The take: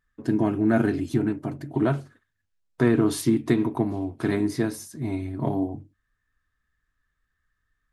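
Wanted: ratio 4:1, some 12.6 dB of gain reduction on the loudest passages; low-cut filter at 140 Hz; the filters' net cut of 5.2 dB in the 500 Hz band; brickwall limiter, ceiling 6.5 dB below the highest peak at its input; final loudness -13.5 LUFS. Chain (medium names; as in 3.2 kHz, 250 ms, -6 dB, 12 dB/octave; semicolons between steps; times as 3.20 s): high-pass 140 Hz; peaking EQ 500 Hz -8.5 dB; compression 4:1, threshold -34 dBFS; trim +26 dB; peak limiter -2.5 dBFS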